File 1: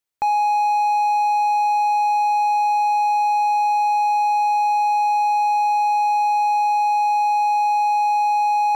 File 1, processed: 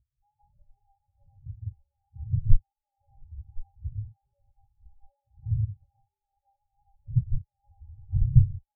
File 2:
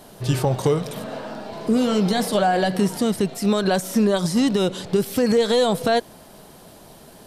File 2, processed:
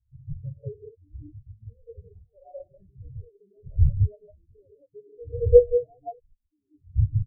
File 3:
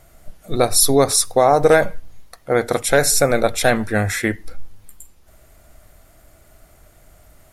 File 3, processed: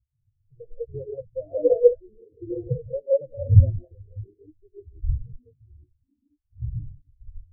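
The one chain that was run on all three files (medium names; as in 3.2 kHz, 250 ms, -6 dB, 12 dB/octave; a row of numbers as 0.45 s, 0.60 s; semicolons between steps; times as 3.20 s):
wind noise 110 Hz -22 dBFS; reverb removal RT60 1.5 s; graphic EQ 125/500/1000/2000/4000/8000 Hz +10/+4/-5/-4/-11/-11 dB; in parallel at +3 dB: compression, threshold -22 dBFS; on the sum: wow and flutter 84 cents; static phaser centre 950 Hz, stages 6; Chebyshev shaper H 8 -20 dB, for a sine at 12.5 dBFS; ever faster or slower copies 84 ms, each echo -6 st, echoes 3, each echo -6 dB; gated-style reverb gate 220 ms rising, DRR -2 dB; spectral contrast expander 4:1; trim -8 dB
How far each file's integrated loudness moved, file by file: -10.5 LU, -2.0 LU, -7.5 LU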